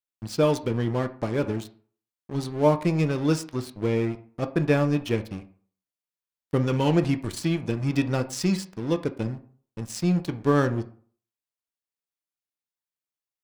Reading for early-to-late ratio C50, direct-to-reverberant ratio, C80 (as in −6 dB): 15.5 dB, 8.5 dB, 19.5 dB